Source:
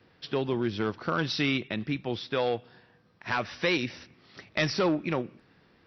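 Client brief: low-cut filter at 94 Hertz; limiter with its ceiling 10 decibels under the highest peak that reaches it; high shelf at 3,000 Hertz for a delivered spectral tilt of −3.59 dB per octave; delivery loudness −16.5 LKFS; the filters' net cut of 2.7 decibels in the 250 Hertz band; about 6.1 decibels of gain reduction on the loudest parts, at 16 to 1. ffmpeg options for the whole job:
ffmpeg -i in.wav -af "highpass=94,equalizer=frequency=250:width_type=o:gain=-3.5,highshelf=frequency=3000:gain=-4,acompressor=threshold=-29dB:ratio=16,volume=21.5dB,alimiter=limit=-4.5dB:level=0:latency=1" out.wav

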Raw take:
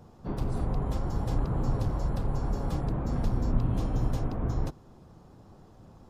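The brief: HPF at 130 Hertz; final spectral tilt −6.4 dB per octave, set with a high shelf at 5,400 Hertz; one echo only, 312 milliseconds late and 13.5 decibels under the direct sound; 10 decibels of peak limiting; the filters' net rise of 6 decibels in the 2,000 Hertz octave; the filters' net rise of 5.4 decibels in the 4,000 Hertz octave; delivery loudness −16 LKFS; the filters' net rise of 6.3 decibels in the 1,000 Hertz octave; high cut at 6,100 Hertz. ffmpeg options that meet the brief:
ffmpeg -i in.wav -af "highpass=130,lowpass=6100,equalizer=frequency=1000:width_type=o:gain=7,equalizer=frequency=2000:width_type=o:gain=4,equalizer=frequency=4000:width_type=o:gain=8.5,highshelf=frequency=5400:gain=-5,alimiter=level_in=6.5dB:limit=-24dB:level=0:latency=1,volume=-6.5dB,aecho=1:1:312:0.211,volume=23dB" out.wav

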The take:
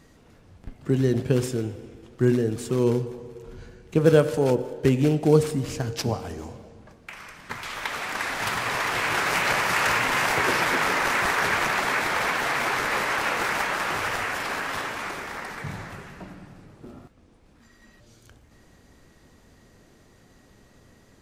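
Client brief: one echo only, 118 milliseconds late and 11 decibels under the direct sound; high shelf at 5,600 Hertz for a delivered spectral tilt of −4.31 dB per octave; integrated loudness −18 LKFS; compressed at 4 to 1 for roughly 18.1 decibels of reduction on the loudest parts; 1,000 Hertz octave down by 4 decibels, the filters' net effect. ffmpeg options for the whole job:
ffmpeg -i in.wav -af "equalizer=frequency=1000:width_type=o:gain=-5,highshelf=frequency=5600:gain=-3.5,acompressor=threshold=-35dB:ratio=4,aecho=1:1:118:0.282,volume=18.5dB" out.wav

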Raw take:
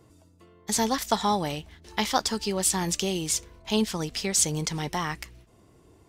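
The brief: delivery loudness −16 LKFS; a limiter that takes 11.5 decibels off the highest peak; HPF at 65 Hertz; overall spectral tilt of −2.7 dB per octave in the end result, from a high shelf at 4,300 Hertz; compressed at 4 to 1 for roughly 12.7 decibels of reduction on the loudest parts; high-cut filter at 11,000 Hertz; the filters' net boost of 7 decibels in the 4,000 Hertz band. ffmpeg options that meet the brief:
ffmpeg -i in.wav -af "highpass=65,lowpass=11000,equalizer=frequency=4000:width_type=o:gain=7,highshelf=frequency=4300:gain=3.5,acompressor=threshold=-32dB:ratio=4,volume=19.5dB,alimiter=limit=-4dB:level=0:latency=1" out.wav

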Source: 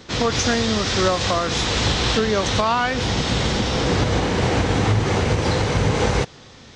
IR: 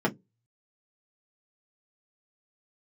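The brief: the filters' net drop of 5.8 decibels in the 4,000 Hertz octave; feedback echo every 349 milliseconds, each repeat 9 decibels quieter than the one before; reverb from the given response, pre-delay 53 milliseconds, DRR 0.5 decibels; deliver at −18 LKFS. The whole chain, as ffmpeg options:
-filter_complex "[0:a]equalizer=frequency=4000:width_type=o:gain=-7.5,aecho=1:1:349|698|1047|1396:0.355|0.124|0.0435|0.0152,asplit=2[link_01][link_02];[1:a]atrim=start_sample=2205,adelay=53[link_03];[link_02][link_03]afir=irnorm=-1:irlink=0,volume=-12dB[link_04];[link_01][link_04]amix=inputs=2:normalize=0,volume=-3dB"

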